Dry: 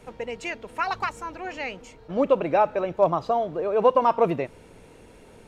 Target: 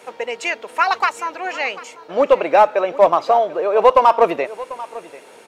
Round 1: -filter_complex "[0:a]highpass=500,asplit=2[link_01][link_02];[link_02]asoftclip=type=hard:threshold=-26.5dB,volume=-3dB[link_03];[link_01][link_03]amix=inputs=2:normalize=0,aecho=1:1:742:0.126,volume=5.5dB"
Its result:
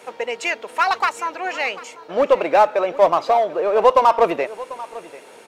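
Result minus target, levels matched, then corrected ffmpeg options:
hard clipping: distortion +8 dB
-filter_complex "[0:a]highpass=500,asplit=2[link_01][link_02];[link_02]asoftclip=type=hard:threshold=-17.5dB,volume=-3dB[link_03];[link_01][link_03]amix=inputs=2:normalize=0,aecho=1:1:742:0.126,volume=5.5dB"

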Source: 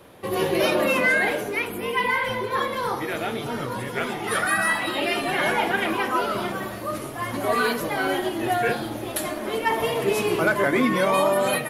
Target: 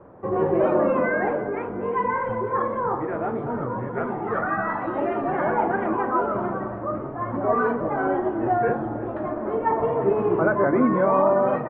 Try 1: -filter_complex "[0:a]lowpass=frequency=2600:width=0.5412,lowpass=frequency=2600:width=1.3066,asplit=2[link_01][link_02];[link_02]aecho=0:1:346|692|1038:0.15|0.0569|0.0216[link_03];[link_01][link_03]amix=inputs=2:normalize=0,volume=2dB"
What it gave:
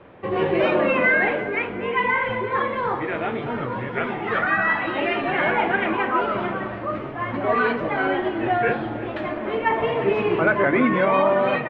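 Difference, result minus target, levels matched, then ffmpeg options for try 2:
2,000 Hz band +7.5 dB
-filter_complex "[0:a]lowpass=frequency=1300:width=0.5412,lowpass=frequency=1300:width=1.3066,asplit=2[link_01][link_02];[link_02]aecho=0:1:346|692|1038:0.15|0.0569|0.0216[link_03];[link_01][link_03]amix=inputs=2:normalize=0,volume=2dB"

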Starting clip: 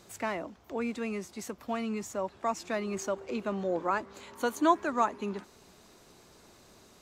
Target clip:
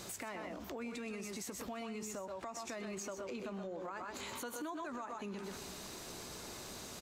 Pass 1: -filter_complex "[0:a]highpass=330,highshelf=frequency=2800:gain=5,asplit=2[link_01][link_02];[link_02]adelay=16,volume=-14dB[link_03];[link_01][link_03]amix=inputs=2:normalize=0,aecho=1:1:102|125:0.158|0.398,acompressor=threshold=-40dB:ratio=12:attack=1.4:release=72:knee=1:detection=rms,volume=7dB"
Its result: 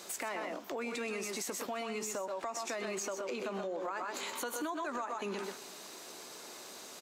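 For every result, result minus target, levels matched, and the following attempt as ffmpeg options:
downward compressor: peak gain reduction −5.5 dB; 250 Hz band −4.0 dB
-filter_complex "[0:a]highpass=330,highshelf=frequency=2800:gain=5,asplit=2[link_01][link_02];[link_02]adelay=16,volume=-14dB[link_03];[link_01][link_03]amix=inputs=2:normalize=0,aecho=1:1:102|125:0.158|0.398,acompressor=threshold=-46dB:ratio=12:attack=1.4:release=72:knee=1:detection=rms,volume=7dB"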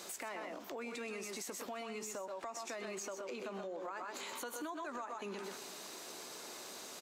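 250 Hz band −4.0 dB
-filter_complex "[0:a]highshelf=frequency=2800:gain=5,asplit=2[link_01][link_02];[link_02]adelay=16,volume=-14dB[link_03];[link_01][link_03]amix=inputs=2:normalize=0,aecho=1:1:102|125:0.158|0.398,acompressor=threshold=-46dB:ratio=12:attack=1.4:release=72:knee=1:detection=rms,volume=7dB"

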